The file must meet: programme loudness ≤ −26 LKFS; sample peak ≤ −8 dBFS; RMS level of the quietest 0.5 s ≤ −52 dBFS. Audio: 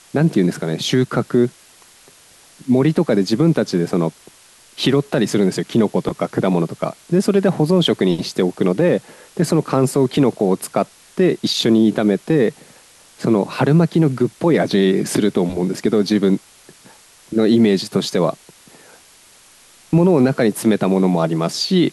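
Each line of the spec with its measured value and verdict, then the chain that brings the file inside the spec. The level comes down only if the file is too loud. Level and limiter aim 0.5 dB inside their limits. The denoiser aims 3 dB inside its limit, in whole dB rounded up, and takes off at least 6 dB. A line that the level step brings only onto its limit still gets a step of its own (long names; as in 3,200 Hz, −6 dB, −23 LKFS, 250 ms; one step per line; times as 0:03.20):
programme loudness −17.5 LKFS: out of spec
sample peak −5.5 dBFS: out of spec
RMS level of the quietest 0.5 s −48 dBFS: out of spec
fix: level −9 dB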